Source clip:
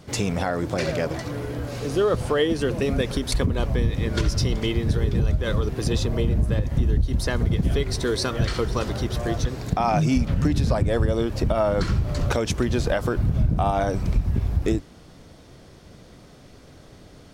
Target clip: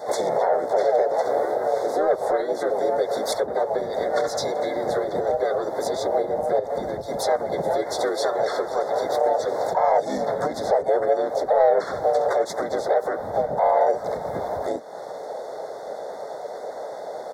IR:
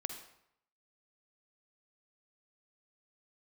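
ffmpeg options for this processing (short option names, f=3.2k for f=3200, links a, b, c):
-filter_complex "[0:a]highpass=f=580:t=q:w=4.9,acrossover=split=1500[a][b];[a]acontrast=90[c];[c][b]amix=inputs=2:normalize=0,alimiter=limit=-15dB:level=0:latency=1:release=317,asplit=2[d][e];[e]acompressor=threshold=-34dB:ratio=6,volume=0.5dB[f];[d][f]amix=inputs=2:normalize=0,aecho=1:1:1.4:0.42,flanger=delay=3.1:depth=3.1:regen=-64:speed=1.5:shape=sinusoidal,asplit=3[g][h][i];[h]asetrate=35002,aresample=44100,atempo=1.25992,volume=-4dB[j];[i]asetrate=55563,aresample=44100,atempo=0.793701,volume=-5dB[k];[g][j][k]amix=inputs=3:normalize=0,asuperstop=centerf=2700:order=20:qfactor=2.2"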